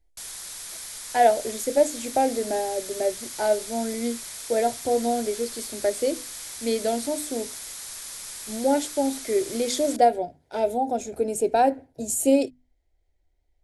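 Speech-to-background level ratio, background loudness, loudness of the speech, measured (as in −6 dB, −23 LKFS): 10.0 dB, −35.0 LKFS, −25.0 LKFS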